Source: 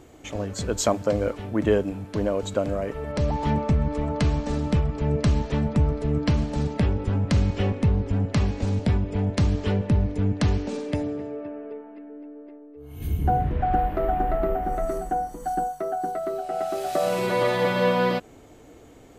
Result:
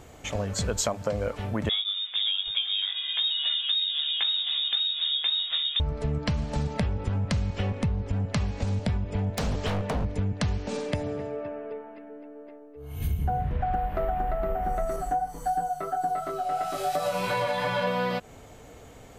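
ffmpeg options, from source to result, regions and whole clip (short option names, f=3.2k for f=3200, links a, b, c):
-filter_complex "[0:a]asettb=1/sr,asplit=3[a][b][c];[a]atrim=end=1.694[d];[b]atrim=start=1.69:end=5.8,asetpts=PTS-STARTPTS,afade=t=in:d=0.004:c=qsin,afade=t=out:st=4.106:d=0.004:c=qsin,flanger=delay=15.5:depth=5.2:speed=2,lowpass=f=3.2k:t=q:w=0.5098,lowpass=f=3.2k:t=q:w=0.6013,lowpass=f=3.2k:t=q:w=0.9,lowpass=f=3.2k:t=q:w=2.563,afreqshift=-3800[e];[c]atrim=start=5.796[f];[d][e]acrossfade=d=0.004:c1=hsin:c2=qsin[g];[g][f]acrossfade=d=0.004:c1=qsin:c2=hsin,asettb=1/sr,asplit=3[h][i][j];[h]atrim=end=9.374[k];[i]atrim=start=9.37:end=10.05,asetpts=PTS-STARTPTS,afade=t=in:d=0.004:c=qsin,afade=t=out:st=0.676:d=0.004:c=qsin,highshelf=f=7.4k:g=5,aeval=exprs='0.0891*(abs(mod(val(0)/0.0891+3,4)-2)-1)':c=same[l];[j]atrim=start=10.046[m];[k][l]acrossfade=d=0.004:c1=hsin:c2=qsin[n];[n][m]acrossfade=d=0.004:c1=qsin:c2=hsin,asettb=1/sr,asplit=3[o][p][q];[o]atrim=end=14.964[r];[p]atrim=start=14.96:end=17.87,asetpts=PTS-STARTPTS,afade=t=in:d=0.004:c=qsin,afade=t=out:st=2.906:d=0.004:c=qsin,aecho=1:1:6.9:0.71,atrim=end_sample=128331,flanger=delay=18:depth=2.6:speed=2.9[s];[q]atrim=start=17.866[t];[r][s]acrossfade=d=0.004:c1=hsin:c2=qsin[u];[u][t]acrossfade=d=0.004:c1=qsin:c2=hsin,equalizer=f=320:w=2.2:g=-11,acompressor=threshold=-28dB:ratio=6,volume=4dB"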